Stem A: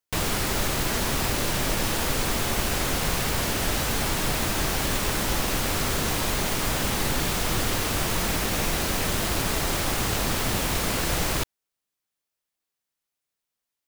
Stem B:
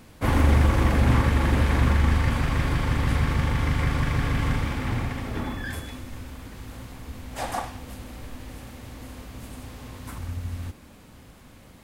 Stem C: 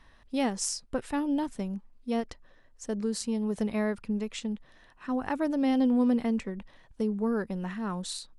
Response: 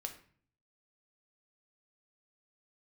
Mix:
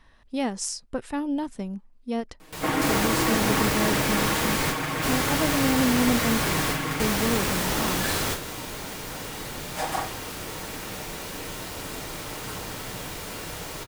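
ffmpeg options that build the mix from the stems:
-filter_complex "[0:a]highpass=f=69:p=1,adelay=2400,volume=0.668,asplit=2[s0][s1];[s1]volume=0.631[s2];[1:a]highpass=240,aecho=1:1:6.4:0.99,adelay=2400,volume=0.841[s3];[2:a]volume=1.12,asplit=2[s4][s5];[s5]apad=whole_len=717577[s6];[s0][s6]sidechaingate=range=0.0224:threshold=0.00355:ratio=16:detection=peak[s7];[3:a]atrim=start_sample=2205[s8];[s2][s8]afir=irnorm=-1:irlink=0[s9];[s7][s3][s4][s9]amix=inputs=4:normalize=0"

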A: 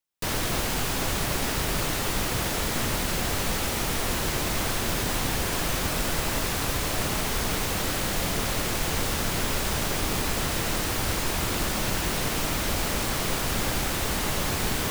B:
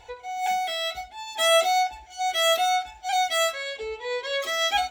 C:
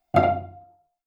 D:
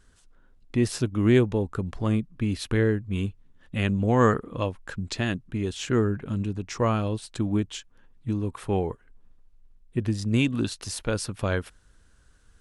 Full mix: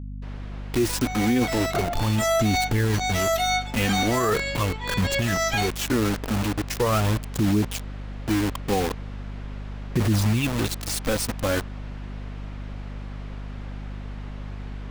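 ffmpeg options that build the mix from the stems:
-filter_complex "[0:a]lowpass=2700,volume=0.158[s0];[1:a]lowshelf=f=340:g=-9,aecho=1:1:3.2:0.86,adelay=800,volume=1.06[s1];[2:a]adelay=1600,volume=0.794[s2];[3:a]aphaser=in_gain=1:out_gain=1:delay=4:decay=0.61:speed=0.4:type=sinusoidal,acrusher=bits=4:mix=0:aa=0.000001,volume=1.33,asplit=2[s3][s4];[s4]apad=whole_len=117492[s5];[s2][s5]sidechaincompress=threshold=0.0282:ratio=8:attack=16:release=132[s6];[s0][s1][s6][s3]amix=inputs=4:normalize=0,aeval=exprs='val(0)+0.0224*(sin(2*PI*50*n/s)+sin(2*PI*2*50*n/s)/2+sin(2*PI*3*50*n/s)/3+sin(2*PI*4*50*n/s)/4+sin(2*PI*5*50*n/s)/5)':c=same,alimiter=limit=0.2:level=0:latency=1:release=17"

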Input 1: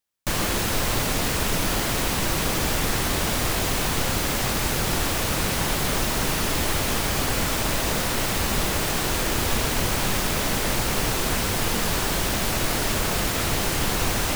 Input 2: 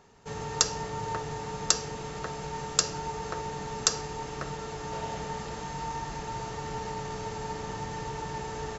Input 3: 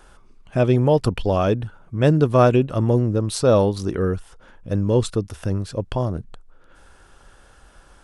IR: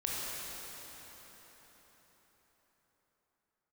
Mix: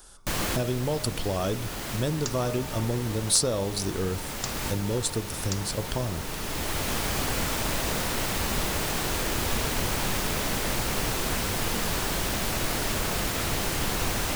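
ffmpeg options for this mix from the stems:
-filter_complex "[0:a]volume=0.631[s0];[1:a]adelay=1650,volume=0.299[s1];[2:a]bandreject=f=68.37:t=h:w=4,bandreject=f=136.74:t=h:w=4,bandreject=f=205.11:t=h:w=4,bandreject=f=273.48:t=h:w=4,bandreject=f=341.85:t=h:w=4,bandreject=f=410.22:t=h:w=4,bandreject=f=478.59:t=h:w=4,bandreject=f=546.96:t=h:w=4,bandreject=f=615.33:t=h:w=4,bandreject=f=683.7:t=h:w=4,bandreject=f=752.07:t=h:w=4,bandreject=f=820.44:t=h:w=4,bandreject=f=888.81:t=h:w=4,bandreject=f=957.18:t=h:w=4,bandreject=f=1025.55:t=h:w=4,bandreject=f=1093.92:t=h:w=4,bandreject=f=1162.29:t=h:w=4,bandreject=f=1230.66:t=h:w=4,bandreject=f=1299.03:t=h:w=4,bandreject=f=1367.4:t=h:w=4,bandreject=f=1435.77:t=h:w=4,bandreject=f=1504.14:t=h:w=4,bandreject=f=1572.51:t=h:w=4,bandreject=f=1640.88:t=h:w=4,bandreject=f=1709.25:t=h:w=4,bandreject=f=1777.62:t=h:w=4,bandreject=f=1845.99:t=h:w=4,bandreject=f=1914.36:t=h:w=4,acompressor=threshold=0.1:ratio=6,aexciter=amount=2.6:drive=8.8:freq=3600,volume=0.596,asplit=2[s2][s3];[s3]apad=whole_len=633047[s4];[s0][s4]sidechaincompress=threshold=0.0178:ratio=4:attack=43:release=1040[s5];[s5][s1][s2]amix=inputs=3:normalize=0"

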